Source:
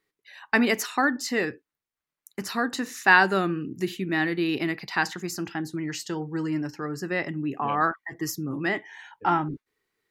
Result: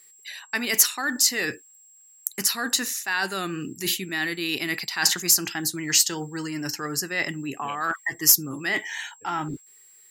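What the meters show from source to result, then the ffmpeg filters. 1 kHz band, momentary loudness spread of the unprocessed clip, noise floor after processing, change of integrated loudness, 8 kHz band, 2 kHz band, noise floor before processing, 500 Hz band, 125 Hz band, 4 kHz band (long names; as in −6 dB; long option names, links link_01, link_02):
−6.0 dB, 10 LU, −54 dBFS, +2.5 dB, +16.5 dB, −2.0 dB, below −85 dBFS, −5.5 dB, −3.5 dB, +10.0 dB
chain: -af "areverse,acompressor=threshold=-32dB:ratio=12,areverse,crystalizer=i=9:c=0,aeval=exprs='0.794*(cos(1*acos(clip(val(0)/0.794,-1,1)))-cos(1*PI/2))+0.0631*(cos(5*acos(clip(val(0)/0.794,-1,1)))-cos(5*PI/2))':channel_layout=same,aeval=exprs='val(0)+0.00282*sin(2*PI*7600*n/s)':channel_layout=same"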